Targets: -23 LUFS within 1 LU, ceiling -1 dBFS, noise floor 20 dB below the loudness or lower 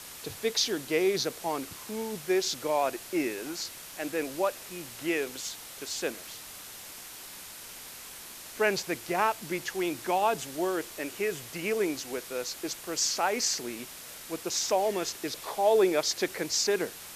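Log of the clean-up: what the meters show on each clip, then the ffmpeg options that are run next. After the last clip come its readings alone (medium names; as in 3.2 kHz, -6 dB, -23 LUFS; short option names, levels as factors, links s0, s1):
noise floor -45 dBFS; noise floor target -50 dBFS; loudness -30.0 LUFS; peak level -13.0 dBFS; loudness target -23.0 LUFS
-> -af "afftdn=nr=6:nf=-45"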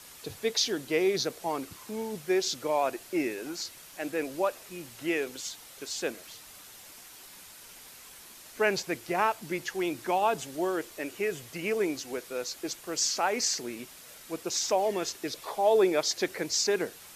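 noise floor -50 dBFS; loudness -30.0 LUFS; peak level -13.0 dBFS; loudness target -23.0 LUFS
-> -af "volume=2.24"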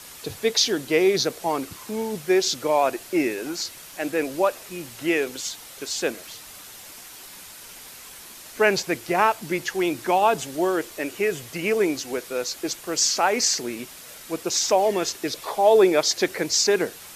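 loudness -23.0 LUFS; peak level -6.0 dBFS; noise floor -43 dBFS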